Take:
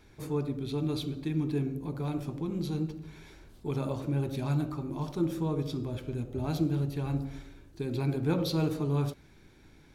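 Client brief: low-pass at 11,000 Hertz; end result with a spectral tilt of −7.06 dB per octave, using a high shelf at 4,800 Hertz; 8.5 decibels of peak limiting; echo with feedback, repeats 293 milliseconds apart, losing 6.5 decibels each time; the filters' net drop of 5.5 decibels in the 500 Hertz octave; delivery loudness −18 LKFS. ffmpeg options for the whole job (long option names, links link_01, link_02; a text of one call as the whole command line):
ffmpeg -i in.wav -af "lowpass=11000,equalizer=frequency=500:width_type=o:gain=-7.5,highshelf=frequency=4800:gain=4,alimiter=level_in=2dB:limit=-24dB:level=0:latency=1,volume=-2dB,aecho=1:1:293|586|879|1172|1465|1758:0.473|0.222|0.105|0.0491|0.0231|0.0109,volume=17dB" out.wav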